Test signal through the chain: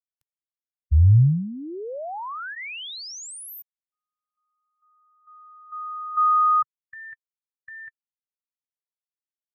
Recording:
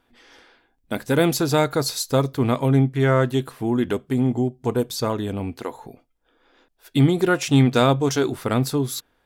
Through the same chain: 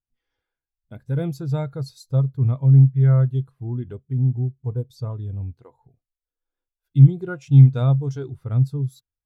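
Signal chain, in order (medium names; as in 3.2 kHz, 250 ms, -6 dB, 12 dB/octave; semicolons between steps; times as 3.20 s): resonant low shelf 170 Hz +9.5 dB, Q 1.5; band-stop 1.8 kHz, Q 27; spectral contrast expander 1.5:1; trim -1.5 dB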